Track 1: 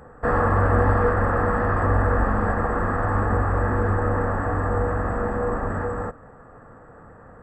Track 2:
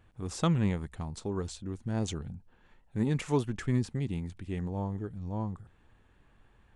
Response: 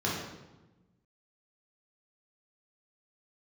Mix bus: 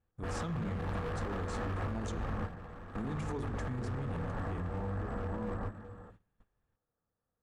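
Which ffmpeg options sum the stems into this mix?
-filter_complex "[0:a]asoftclip=type=hard:threshold=-21dB,volume=-11.5dB[link_01];[1:a]volume=-4.5dB,asplit=3[link_02][link_03][link_04];[link_03]volume=-18dB[link_05];[link_04]apad=whole_len=327412[link_06];[link_01][link_06]sidechaingate=range=-14dB:threshold=-55dB:ratio=16:detection=peak[link_07];[2:a]atrim=start_sample=2205[link_08];[link_05][link_08]afir=irnorm=-1:irlink=0[link_09];[link_07][link_02][link_09]amix=inputs=3:normalize=0,agate=range=-19dB:threshold=-59dB:ratio=16:detection=peak,lowshelf=frequency=340:gain=4,alimiter=level_in=5.5dB:limit=-24dB:level=0:latency=1:release=76,volume=-5.5dB"

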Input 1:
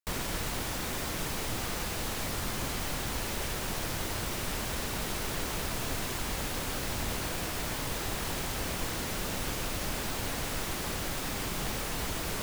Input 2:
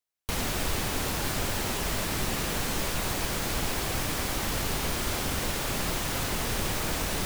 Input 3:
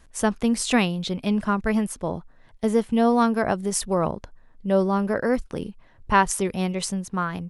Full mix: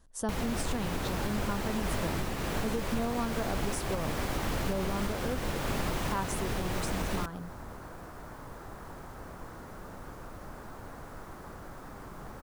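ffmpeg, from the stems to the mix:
ffmpeg -i stem1.wav -i stem2.wav -i stem3.wav -filter_complex "[0:a]highshelf=frequency=1900:width_type=q:width=1.5:gain=-12,adelay=600,volume=-9.5dB[link_01];[1:a]highshelf=frequency=2600:gain=-10.5,volume=2.5dB[link_02];[2:a]equalizer=frequency=2300:width_type=o:width=0.78:gain=-11.5,volume=-7.5dB[link_03];[link_01][link_02][link_03]amix=inputs=3:normalize=0,alimiter=limit=-21.5dB:level=0:latency=1:release=298" out.wav

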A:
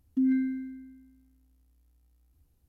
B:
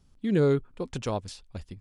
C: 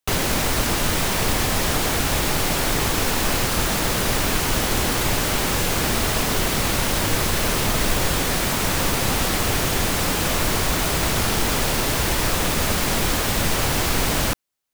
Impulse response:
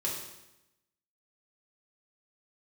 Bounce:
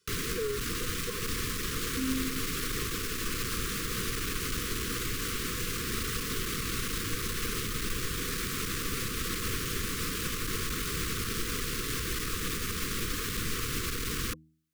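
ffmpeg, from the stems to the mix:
-filter_complex "[0:a]adelay=1800,volume=-5.5dB[link_01];[1:a]highpass=420,aecho=1:1:2:0.99,volume=-0.5dB[link_02];[2:a]volume=-5.5dB[link_03];[link_02][link_03]amix=inputs=2:normalize=0,alimiter=limit=-20.5dB:level=0:latency=1:release=276,volume=0dB[link_04];[link_01][link_04]amix=inputs=2:normalize=0,bandreject=frequency=79.02:width_type=h:width=4,bandreject=frequency=158.04:width_type=h:width=4,bandreject=frequency=237.06:width_type=h:width=4,bandreject=frequency=316.08:width_type=h:width=4,aeval=exprs='clip(val(0),-1,0.0282)':channel_layout=same,asuperstop=centerf=730:order=20:qfactor=1.3"

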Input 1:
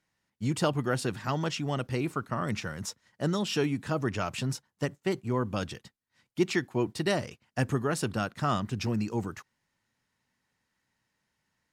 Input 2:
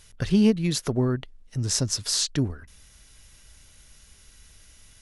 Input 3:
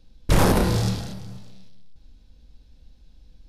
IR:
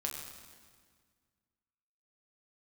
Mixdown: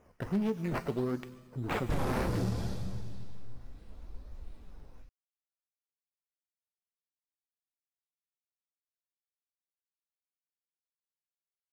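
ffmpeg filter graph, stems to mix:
-filter_complex "[1:a]highpass=frequency=250:poles=1,acrusher=samples=10:mix=1:aa=0.000001:lfo=1:lforange=6:lforate=1.5,asoftclip=type=tanh:threshold=-19.5dB,volume=1dB,asplit=2[link_01][link_02];[link_02]volume=-13dB[link_03];[2:a]dynaudnorm=framelen=340:gausssize=5:maxgain=9.5dB,adelay=1600,volume=-5.5dB,asplit=2[link_04][link_05];[link_05]volume=-6.5dB[link_06];[link_01][link_04]amix=inputs=2:normalize=0,adynamicsmooth=sensitivity=2.5:basefreq=810,alimiter=limit=-18.5dB:level=0:latency=1,volume=0dB[link_07];[3:a]atrim=start_sample=2205[link_08];[link_03][link_06]amix=inputs=2:normalize=0[link_09];[link_09][link_08]afir=irnorm=-1:irlink=0[link_10];[link_07][link_10]amix=inputs=2:normalize=0,flanger=delay=1.6:depth=6.3:regen=61:speed=0.7:shape=sinusoidal,acompressor=threshold=-27dB:ratio=6"

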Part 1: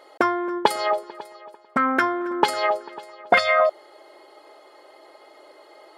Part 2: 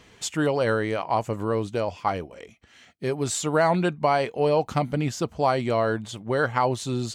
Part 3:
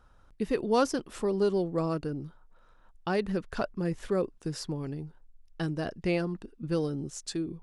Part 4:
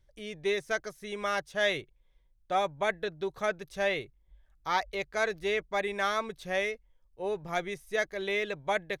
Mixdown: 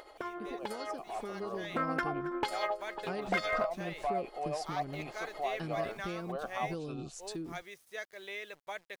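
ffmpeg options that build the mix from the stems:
ffmpeg -i stem1.wav -i stem2.wav -i stem3.wav -i stem4.wav -filter_complex "[0:a]acompressor=mode=upward:threshold=-39dB:ratio=2.5,asoftclip=type=hard:threshold=-10.5dB,volume=-7dB[link_01];[1:a]asplit=3[link_02][link_03][link_04];[link_02]bandpass=frequency=730:width_type=q:width=8,volume=0dB[link_05];[link_03]bandpass=frequency=1090:width_type=q:width=8,volume=-6dB[link_06];[link_04]bandpass=frequency=2440:width_type=q:width=8,volume=-9dB[link_07];[link_05][link_06][link_07]amix=inputs=3:normalize=0,asoftclip=type=tanh:threshold=-20.5dB,volume=-2.5dB[link_08];[2:a]volume=-13.5dB[link_09];[3:a]highpass=frequency=730:poles=1,acrusher=bits=8:mix=0:aa=0.000001,volume=-15.5dB[link_10];[link_09][link_10]amix=inputs=2:normalize=0,acompressor=threshold=-42dB:ratio=6,volume=0dB[link_11];[link_01][link_08]amix=inputs=2:normalize=0,tremolo=f=11:d=0.48,acompressor=threshold=-46dB:ratio=2,volume=0dB[link_12];[link_11][link_12]amix=inputs=2:normalize=0,dynaudnorm=framelen=900:gausssize=3:maxgain=7dB" out.wav

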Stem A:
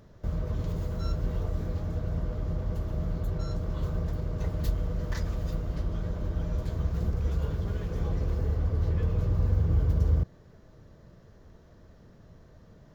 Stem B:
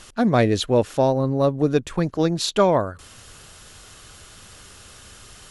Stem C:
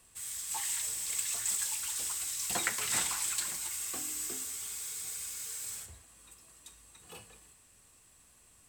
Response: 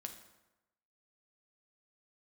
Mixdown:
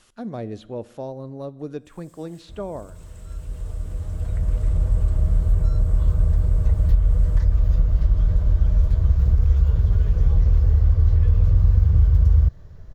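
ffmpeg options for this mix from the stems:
-filter_complex "[0:a]asubboost=boost=7:cutoff=90,adelay=2250,volume=2.5dB[link_01];[1:a]volume=-15dB,asplit=3[link_02][link_03][link_04];[link_03]volume=-6.5dB[link_05];[2:a]adelay=1700,volume=-17.5dB[link_06];[link_04]apad=whole_len=670026[link_07];[link_01][link_07]sidechaincompress=threshold=-50dB:ratio=4:attack=16:release=1340[link_08];[3:a]atrim=start_sample=2205[link_09];[link_05][link_09]afir=irnorm=-1:irlink=0[link_10];[link_08][link_02][link_06][link_10]amix=inputs=4:normalize=0,acrossover=split=870|3000[link_11][link_12][link_13];[link_11]acompressor=threshold=-12dB:ratio=4[link_14];[link_12]acompressor=threshold=-50dB:ratio=4[link_15];[link_13]acompressor=threshold=-58dB:ratio=4[link_16];[link_14][link_15][link_16]amix=inputs=3:normalize=0"

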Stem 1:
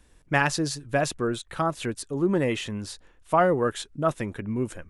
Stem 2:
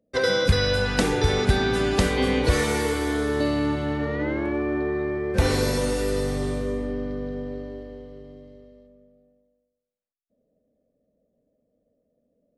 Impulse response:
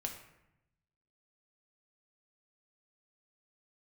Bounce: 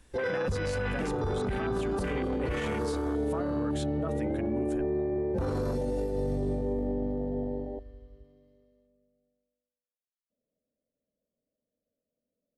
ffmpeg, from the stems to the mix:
-filter_complex "[0:a]acompressor=threshold=-30dB:ratio=6,volume=0dB[link_01];[1:a]afwtdn=0.0501,volume=0dB[link_02];[link_01][link_02]amix=inputs=2:normalize=0,alimiter=limit=-23.5dB:level=0:latency=1:release=12"

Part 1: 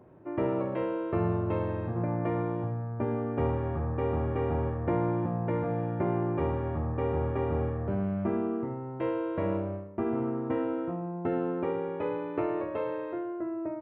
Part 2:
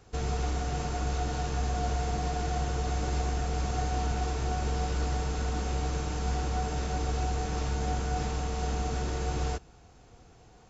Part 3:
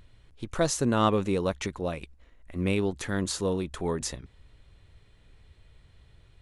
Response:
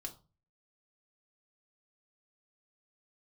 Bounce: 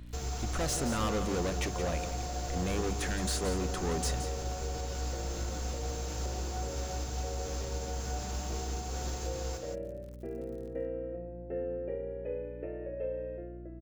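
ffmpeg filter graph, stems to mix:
-filter_complex "[0:a]dynaudnorm=framelen=110:gausssize=9:maxgain=9.5dB,asplit=3[link_01][link_02][link_03];[link_01]bandpass=frequency=530:width_type=q:width=8,volume=0dB[link_04];[link_02]bandpass=frequency=1840:width_type=q:width=8,volume=-6dB[link_05];[link_03]bandpass=frequency=2480:width_type=q:width=8,volume=-9dB[link_06];[link_04][link_05][link_06]amix=inputs=3:normalize=0,lowshelf=frequency=470:gain=5,adelay=250,volume=-10.5dB[link_07];[1:a]bass=frequency=250:gain=-9,treble=frequency=4000:gain=10,acrusher=bits=7:mix=0:aa=0.000001,volume=-3dB,asplit=2[link_08][link_09];[link_09]volume=-11dB[link_10];[2:a]asoftclip=type=tanh:threshold=-33dB,volume=2.5dB,asplit=2[link_11][link_12];[link_12]volume=-10.5dB[link_13];[link_07][link_08]amix=inputs=2:normalize=0,equalizer=frequency=69:width_type=o:width=2.5:gain=12,alimiter=level_in=3dB:limit=-24dB:level=0:latency=1:release=494,volume=-3dB,volume=0dB[link_14];[link_10][link_13]amix=inputs=2:normalize=0,aecho=0:1:172:1[link_15];[link_11][link_14][link_15]amix=inputs=3:normalize=0,bandreject=frequency=50:width_type=h:width=6,bandreject=frequency=100:width_type=h:width=6,bandreject=frequency=150:width_type=h:width=6,bandreject=frequency=200:width_type=h:width=6,aeval=exprs='val(0)+0.00562*(sin(2*PI*60*n/s)+sin(2*PI*2*60*n/s)/2+sin(2*PI*3*60*n/s)/3+sin(2*PI*4*60*n/s)/4+sin(2*PI*5*60*n/s)/5)':channel_layout=same"

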